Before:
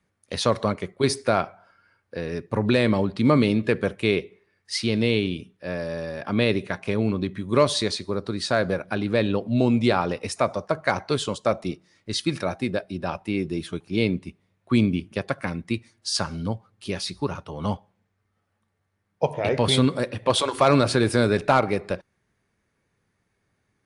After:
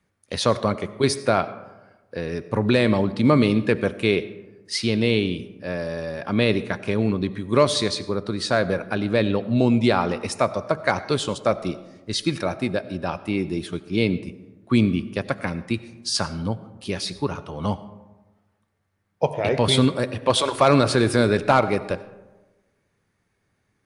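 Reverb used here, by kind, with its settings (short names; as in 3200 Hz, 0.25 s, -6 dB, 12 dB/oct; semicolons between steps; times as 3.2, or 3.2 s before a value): digital reverb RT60 1.2 s, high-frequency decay 0.4×, pre-delay 50 ms, DRR 15.5 dB; gain +1.5 dB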